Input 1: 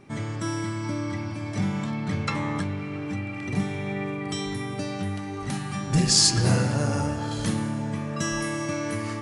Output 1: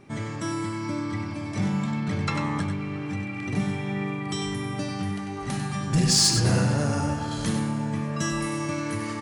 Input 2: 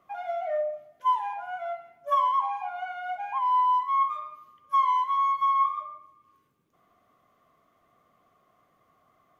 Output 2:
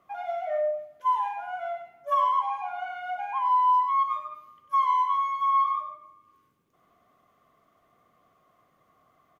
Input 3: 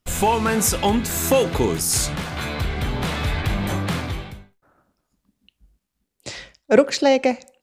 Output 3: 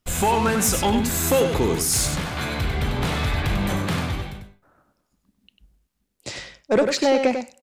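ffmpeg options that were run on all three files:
ffmpeg -i in.wav -af "asoftclip=type=tanh:threshold=-12dB,aecho=1:1:96:0.447" out.wav

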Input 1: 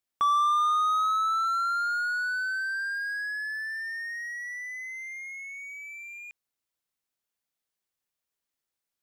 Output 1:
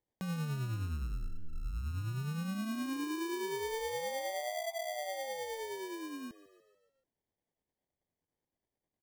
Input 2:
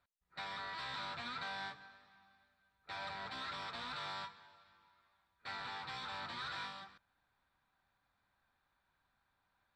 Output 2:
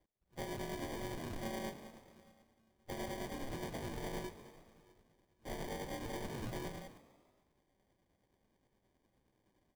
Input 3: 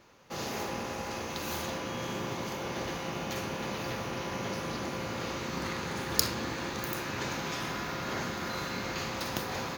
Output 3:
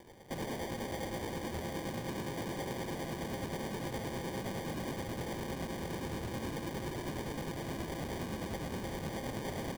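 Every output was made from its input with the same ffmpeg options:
ffmpeg -i in.wav -filter_complex "[0:a]lowpass=2900,aemphasis=mode=reproduction:type=75fm,acrossover=split=460[link_01][link_02];[link_02]acompressor=threshold=-37dB:ratio=8[link_03];[link_01][link_03]amix=inputs=2:normalize=0,alimiter=level_in=9.5dB:limit=-24dB:level=0:latency=1:release=31,volume=-9.5dB,acrusher=samples=33:mix=1:aa=0.000001,asoftclip=type=tanh:threshold=-38dB,tremolo=f=9.6:d=0.4,asplit=2[link_04][link_05];[link_05]asplit=5[link_06][link_07][link_08][link_09][link_10];[link_06]adelay=145,afreqshift=56,volume=-17.5dB[link_11];[link_07]adelay=290,afreqshift=112,volume=-22.5dB[link_12];[link_08]adelay=435,afreqshift=168,volume=-27.6dB[link_13];[link_09]adelay=580,afreqshift=224,volume=-32.6dB[link_14];[link_10]adelay=725,afreqshift=280,volume=-37.6dB[link_15];[link_11][link_12][link_13][link_14][link_15]amix=inputs=5:normalize=0[link_16];[link_04][link_16]amix=inputs=2:normalize=0,volume=6.5dB" out.wav

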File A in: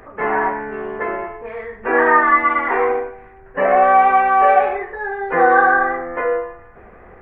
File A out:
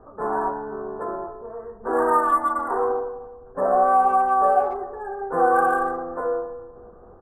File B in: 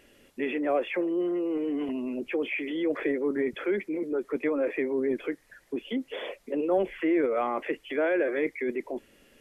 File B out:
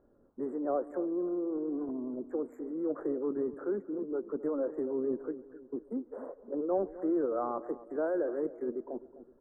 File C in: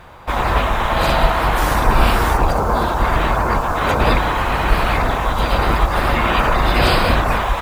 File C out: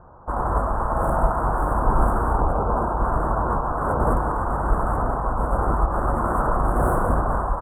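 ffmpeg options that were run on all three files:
ffmpeg -i in.wav -filter_complex "[0:a]asplit=2[link_01][link_02];[link_02]adelay=257,lowpass=frequency=890:poles=1,volume=-14dB,asplit=2[link_03][link_04];[link_04]adelay=257,lowpass=frequency=890:poles=1,volume=0.48,asplit=2[link_05][link_06];[link_06]adelay=257,lowpass=frequency=890:poles=1,volume=0.48,asplit=2[link_07][link_08];[link_08]adelay=257,lowpass=frequency=890:poles=1,volume=0.48,asplit=2[link_09][link_10];[link_10]adelay=257,lowpass=frequency=890:poles=1,volume=0.48[link_11];[link_03][link_05][link_07][link_09][link_11]amix=inputs=5:normalize=0[link_12];[link_01][link_12]amix=inputs=2:normalize=0,adynamicsmooth=sensitivity=2:basefreq=1700,asuperstop=centerf=3600:order=12:qfactor=0.52,asplit=2[link_13][link_14];[link_14]adelay=140,highpass=300,lowpass=3400,asoftclip=type=hard:threshold=-10dB,volume=-23dB[link_15];[link_13][link_15]amix=inputs=2:normalize=0,volume=-5dB" out.wav

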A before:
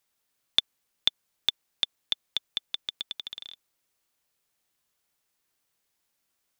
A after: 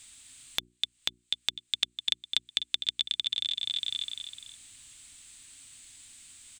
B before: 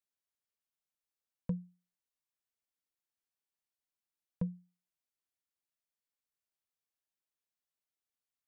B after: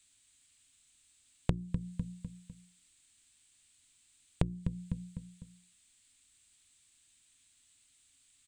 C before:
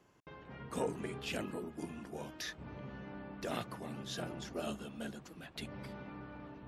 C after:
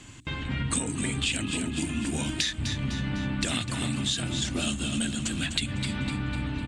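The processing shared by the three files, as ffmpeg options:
ffmpeg -i in.wav -filter_complex "[0:a]firequalizer=gain_entry='entry(110,0);entry(170,-11);entry(270,-4);entry(410,-21);entry(2300,-4);entry(3700,0);entry(5500,-8);entry(8100,8);entry(12000,-22)':delay=0.05:min_phase=1,asplit=2[link_01][link_02];[link_02]aecho=0:1:251|502|753|1004:0.282|0.118|0.0497|0.0209[link_03];[link_01][link_03]amix=inputs=2:normalize=0,acompressor=threshold=-53dB:ratio=16,bandreject=frequency=60:width_type=h:width=6,bandreject=frequency=120:width_type=h:width=6,bandreject=frequency=180:width_type=h:width=6,bandreject=frequency=240:width_type=h:width=6,bandreject=frequency=300:width_type=h:width=6,bandreject=frequency=360:width_type=h:width=6,alimiter=level_in=34dB:limit=-1dB:release=50:level=0:latency=1,volume=-5.5dB" out.wav

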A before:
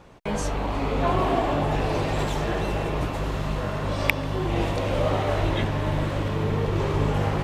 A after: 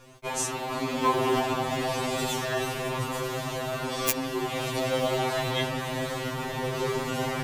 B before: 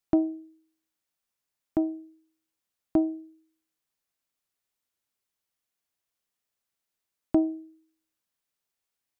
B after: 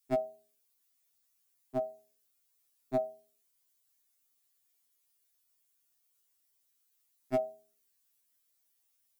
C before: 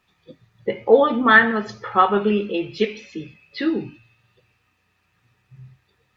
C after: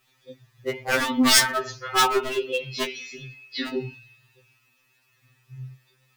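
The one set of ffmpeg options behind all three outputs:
ffmpeg -i in.wav -af "aeval=exprs='0.211*(abs(mod(val(0)/0.211+3,4)-2)-1)':channel_layout=same,crystalizer=i=2.5:c=0,afftfilt=real='re*2.45*eq(mod(b,6),0)':imag='im*2.45*eq(mod(b,6),0)':win_size=2048:overlap=0.75" out.wav

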